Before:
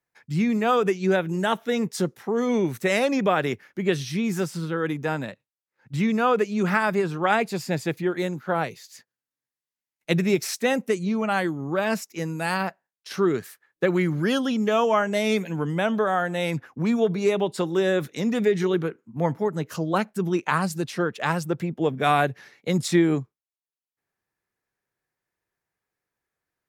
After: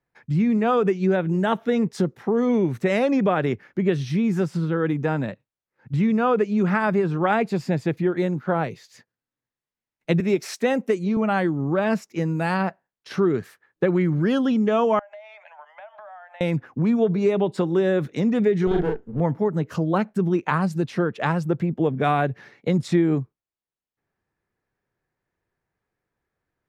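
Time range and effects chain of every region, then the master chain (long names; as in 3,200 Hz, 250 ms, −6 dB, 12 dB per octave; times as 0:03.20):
0:10.20–0:11.17: high-pass filter 230 Hz + high-shelf EQ 5,600 Hz +3.5 dB
0:14.99–0:16.41: Chebyshev high-pass with heavy ripple 590 Hz, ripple 6 dB + head-to-tape spacing loss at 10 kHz 30 dB + downward compressor 20 to 1, threshold −42 dBFS
0:18.67–0:19.20: lower of the sound and its delayed copy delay 0.59 ms + parametric band 450 Hz +10 dB 0.23 octaves + double-tracking delay 41 ms −2.5 dB
whole clip: RIAA equalisation playback; downward compressor 2 to 1, threshold −22 dBFS; low-shelf EQ 150 Hz −11 dB; level +4 dB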